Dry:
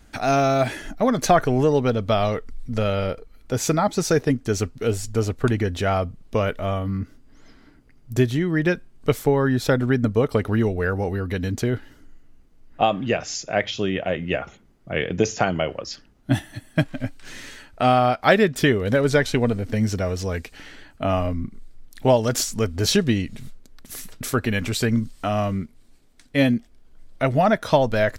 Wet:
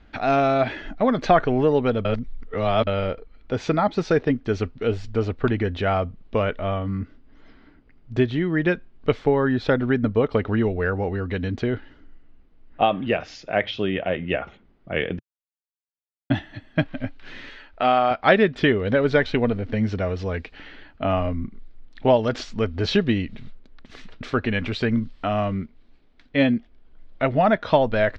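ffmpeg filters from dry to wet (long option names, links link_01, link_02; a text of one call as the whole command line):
ffmpeg -i in.wav -filter_complex "[0:a]asettb=1/sr,asplit=3[link_01][link_02][link_03];[link_01]atrim=end=17.494[link_04];[link_02]atrim=start=17.49:end=18.11,asetpts=PTS-STARTPTS,afade=type=in:duration=0.004:curve=qsin,afade=type=out:start_time=0.616:duration=0.004:curve=qsin,equalizer=frequency=130:width_type=o:width=1.9:gain=-10.5[link_05];[link_03]atrim=start=18.106[link_06];[link_04][link_05]acrossfade=duration=0.004:curve1=hsin:curve2=qsin[link_07];[link_07][link_06]acrossfade=duration=0.004:curve1=qsin:curve2=hsin,asplit=5[link_08][link_09][link_10][link_11][link_12];[link_08]atrim=end=2.052[link_13];[link_09]atrim=start=2.048:end=2.872,asetpts=PTS-STARTPTS,areverse[link_14];[link_10]atrim=start=2.868:end=15.19,asetpts=PTS-STARTPTS,afade=type=out:start_time=12.318:duration=0.004:curve=hsin[link_15];[link_11]atrim=start=15.19:end=16.3,asetpts=PTS-STARTPTS,volume=0[link_16];[link_12]atrim=start=16.3,asetpts=PTS-STARTPTS,afade=type=in:duration=0.004:curve=hsin[link_17];[link_13][link_14]acrossfade=duration=0.004:curve1=hsin:curve2=hsin[link_18];[link_15][link_16][link_17]concat=n=3:v=0:a=1[link_19];[link_18][link_19]acrossfade=duration=0.004:curve1=hsin:curve2=hsin,lowpass=frequency=3800:width=0.5412,lowpass=frequency=3800:width=1.3066,equalizer=frequency=130:width=2.5:gain=-4.5" out.wav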